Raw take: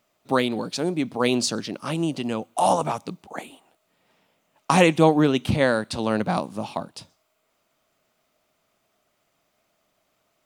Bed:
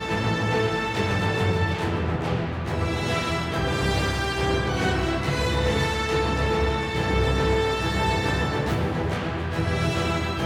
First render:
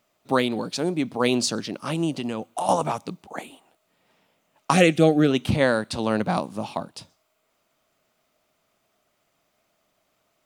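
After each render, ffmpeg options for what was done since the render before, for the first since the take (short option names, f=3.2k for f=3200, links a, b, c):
-filter_complex "[0:a]asettb=1/sr,asplit=3[a][b][c];[a]atrim=end=2.124[d];[b]atrim=start=2.12:end=2.69,asetpts=PTS-STARTPTS,afade=t=in:d=0.004:c=qsin,afade=t=out:st=0.566:d=0.004:c=qsin,acompressor=threshold=-23dB:ratio=6:attack=3.2:release=140:knee=1:detection=peak[e];[c]atrim=start=2.686[f];[d][e]acrossfade=d=0.004:c1=hsin:c2=qsin[g];[g][f]acrossfade=d=0.004:c1=qsin:c2=hsin,asettb=1/sr,asplit=3[h][i][j];[h]atrim=end=4.734[k];[i]atrim=start=4.73:end=5.31,asetpts=PTS-STARTPTS,afade=t=in:d=0.004:c=qsin,afade=t=out:st=0.576:d=0.004:c=qsin,asuperstop=centerf=960:order=4:qfactor=2[l];[j]atrim=start=5.306[m];[k][l]acrossfade=d=0.004:c1=hsin:c2=qsin[n];[n][m]acrossfade=d=0.004:c1=qsin:c2=hsin"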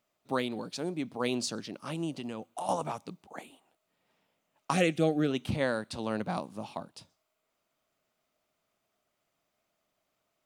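-af "volume=-9.5dB"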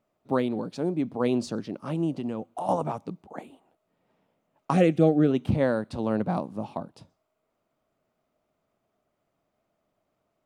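-af "tiltshelf=f=1.5k:g=8"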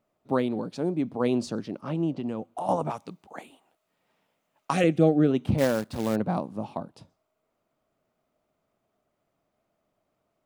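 -filter_complex "[0:a]asettb=1/sr,asplit=3[a][b][c];[a]atrim=end=1.814[d];[b]atrim=start=1.81:end=2.28,asetpts=PTS-STARTPTS,afade=t=in:d=0.004:c=qsin,afade=t=out:st=0.466:d=0.004:c=qsin,lowpass=5.3k[e];[c]atrim=start=2.276[f];[d][e]acrossfade=d=0.004:c1=hsin:c2=qsin[g];[g][f]acrossfade=d=0.004:c1=qsin:c2=hsin,asettb=1/sr,asplit=3[h][i][j];[h]atrim=end=2.904[k];[i]atrim=start=2.9:end=4.84,asetpts=PTS-STARTPTS,afade=t=in:d=0.004:c=qsin,afade=t=out:st=1.936:d=0.004:c=qsin,tiltshelf=f=970:g=-6.5[l];[j]atrim=start=4.836[m];[k][l]acrossfade=d=0.004:c1=hsin:c2=qsin[n];[n][m]acrossfade=d=0.004:c1=qsin:c2=hsin,asettb=1/sr,asplit=3[o][p][q];[o]atrim=end=5.584[r];[p]atrim=start=5.58:end=6.16,asetpts=PTS-STARTPTS,afade=t=in:d=0.004:c=qsin,afade=t=out:st=0.576:d=0.004:c=qsin,acrusher=bits=3:mode=log:mix=0:aa=0.000001[s];[q]atrim=start=6.156[t];[r][s]acrossfade=d=0.004:c1=hsin:c2=qsin[u];[u][t]acrossfade=d=0.004:c1=qsin:c2=hsin"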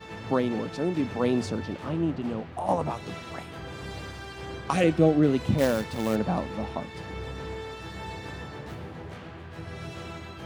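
-filter_complex "[1:a]volume=-14.5dB[a];[0:a][a]amix=inputs=2:normalize=0"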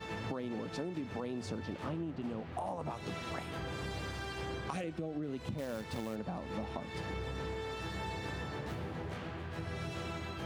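-af "alimiter=limit=-19dB:level=0:latency=1:release=181,acompressor=threshold=-35dB:ratio=10"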